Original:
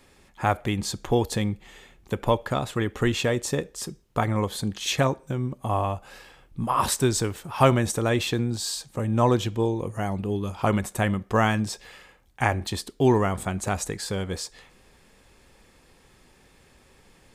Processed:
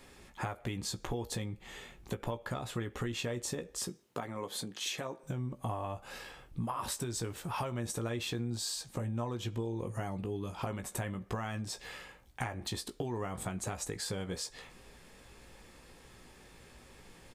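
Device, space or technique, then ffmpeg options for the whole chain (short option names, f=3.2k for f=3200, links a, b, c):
serial compression, leveller first: -filter_complex "[0:a]acompressor=threshold=-24dB:ratio=3,acompressor=threshold=-35dB:ratio=6,asettb=1/sr,asplit=3[a][b][c];[a]atrim=end=3.884[d];[b]atrim=start=3.88:end=5.23,asetpts=PTS-STARTPTS,afade=t=in:d=0.004:c=qsin,afade=t=out:st=1.346:d=0.004:c=qsin,highpass=200[e];[c]atrim=start=5.226[f];[d][e]acrossfade=d=0.004:c1=hsin:c2=qsin[g];[g][f]acrossfade=d=0.004:c1=qsin:c2=hsin,asplit=2[h][i];[i]adelay=17,volume=-8dB[j];[h][j]amix=inputs=2:normalize=0"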